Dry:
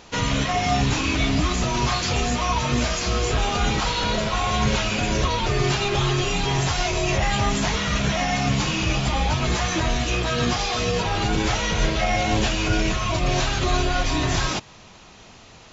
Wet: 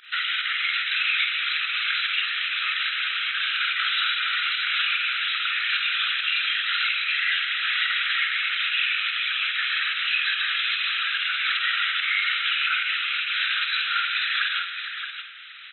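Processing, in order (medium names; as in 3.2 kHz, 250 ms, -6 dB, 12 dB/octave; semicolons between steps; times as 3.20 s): FFT band-pass 1.3–4 kHz; in parallel at +2 dB: compression, threshold -39 dBFS, peak gain reduction 14.5 dB; on the sum: whisper effect; volume shaper 145 bpm, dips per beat 1, -17 dB, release 69 ms; multi-tap echo 49/151/274/463/624/681 ms -6.5/-16.5/-18/-13/-8.5/-19 dB; on a send at -9 dB: reverberation RT60 1.4 s, pre-delay 86 ms; on the sum: trim +1 dB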